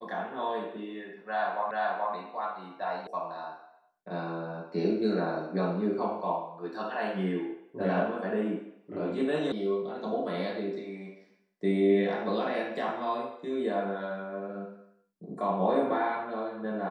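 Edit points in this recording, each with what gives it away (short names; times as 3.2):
1.71 repeat of the last 0.43 s
3.07 sound cut off
9.52 sound cut off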